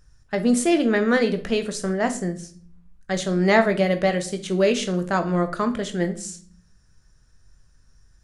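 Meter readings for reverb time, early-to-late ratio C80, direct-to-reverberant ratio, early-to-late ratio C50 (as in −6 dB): 0.50 s, 18.5 dB, 7.0 dB, 13.0 dB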